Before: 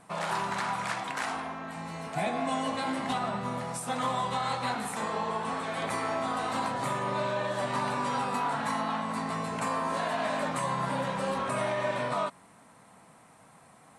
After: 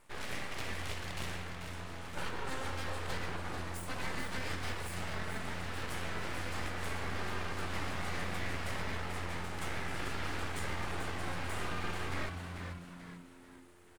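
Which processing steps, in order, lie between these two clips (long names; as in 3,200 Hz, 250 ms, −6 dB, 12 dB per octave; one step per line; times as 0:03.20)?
full-wave rectification
echo with shifted repeats 439 ms, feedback 45%, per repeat −88 Hz, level −7 dB
level −6 dB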